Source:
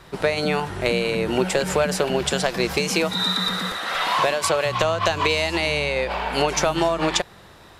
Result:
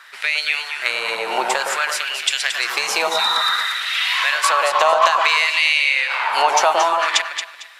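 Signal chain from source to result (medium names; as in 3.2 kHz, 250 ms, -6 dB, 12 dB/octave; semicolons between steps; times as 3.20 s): LFO high-pass sine 0.57 Hz 820–2500 Hz; echo whose repeats swap between lows and highs 113 ms, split 1.2 kHz, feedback 50%, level -2 dB; trim +2.5 dB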